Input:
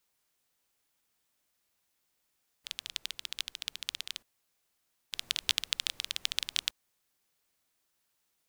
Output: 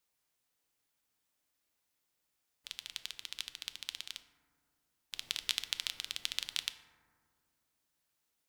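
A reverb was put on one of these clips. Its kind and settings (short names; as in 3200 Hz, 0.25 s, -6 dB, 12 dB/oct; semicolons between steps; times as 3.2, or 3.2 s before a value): FDN reverb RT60 1.9 s, low-frequency decay 1.45×, high-frequency decay 0.3×, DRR 9 dB; gain -4.5 dB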